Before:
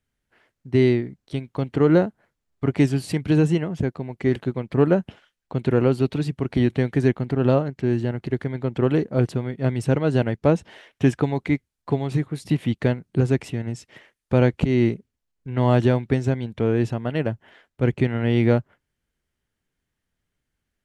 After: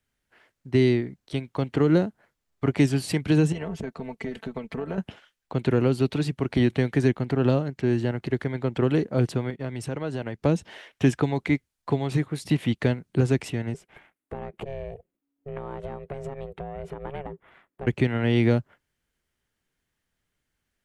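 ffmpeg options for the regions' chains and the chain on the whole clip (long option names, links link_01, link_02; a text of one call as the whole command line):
ffmpeg -i in.wav -filter_complex "[0:a]asettb=1/sr,asplit=3[link_01][link_02][link_03];[link_01]atrim=end=3.524[link_04];[link_02]atrim=start=3.52:end=4.98,asetpts=PTS-STARTPTS,afade=type=in:duration=0.004:curve=qsin,afade=type=out:start_time=1.456:duration=0.004:curve=qsin,aecho=1:1:4.5:0.6,atrim=end_sample=64386,acompressor=threshold=-24dB:ratio=12:attack=3.2:release=140:knee=1:detection=peak,tremolo=f=240:d=0.519[link_05];[link_03]atrim=start=4.976[link_06];[link_04][link_05]acrossfade=duration=0.004:curve1=hsin:curve2=qsin[link_07];[link_07][link_06]acrossfade=duration=0.004:curve1=qsin:curve2=hsin,asettb=1/sr,asplit=3[link_08][link_09][link_10];[link_08]atrim=end=9.504[link_11];[link_09]atrim=start=9.5:end=10.39,asetpts=PTS-STARTPTS,afade=type=in:duration=0.004:curve=qsin,afade=type=out:start_time=0.886:duration=0.004:curve=qsin,agate=range=-33dB:threshold=-33dB:ratio=3:release=100:detection=peak,acompressor=threshold=-28dB:ratio=3:attack=3.2:release=140:knee=1:detection=peak[link_12];[link_10]atrim=start=10.386[link_13];[link_11][link_12]acrossfade=duration=0.004:curve1=hsin:curve2=qsin[link_14];[link_14][link_13]acrossfade=duration=0.004:curve1=qsin:curve2=hsin,asettb=1/sr,asplit=3[link_15][link_16][link_17];[link_15]atrim=end=13.744[link_18];[link_16]atrim=start=13.74:end=17.87,asetpts=PTS-STARTPTS,afade=type=in:duration=0.004:curve=qsin,afade=type=out:start_time=4.126:duration=0.004:curve=qsin,equalizer=frequency=5100:width_type=o:width=1.6:gain=-14,acompressor=threshold=-26dB:ratio=20:attack=3.2:release=140:knee=1:detection=peak,aeval=exprs='val(0)*sin(2*PI*280*n/s)':channel_layout=same[link_19];[link_17]atrim=start=17.866[link_20];[link_18][link_19]acrossfade=duration=0.004:curve1=hsin:curve2=qsin[link_21];[link_21][link_20]acrossfade=duration=0.004:curve1=qsin:curve2=hsin,lowshelf=frequency=410:gain=-5,acrossover=split=340|3000[link_22][link_23][link_24];[link_23]acompressor=threshold=-28dB:ratio=6[link_25];[link_22][link_25][link_24]amix=inputs=3:normalize=0,volume=2.5dB" out.wav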